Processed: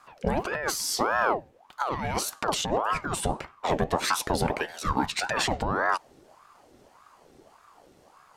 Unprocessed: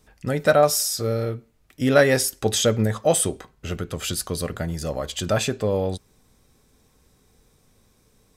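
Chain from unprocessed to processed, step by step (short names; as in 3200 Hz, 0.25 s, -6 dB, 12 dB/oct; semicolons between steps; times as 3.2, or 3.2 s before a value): in parallel at 0 dB: limiter -13 dBFS, peak gain reduction 8.5 dB; 4.59–5.32 on the sum: HPF 590 Hz -> 280 Hz 24 dB/oct; negative-ratio compressor -20 dBFS, ratio -1; LPF 3400 Hz 6 dB/oct; ring modulator with a swept carrier 750 Hz, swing 60%, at 1.7 Hz; gain -2.5 dB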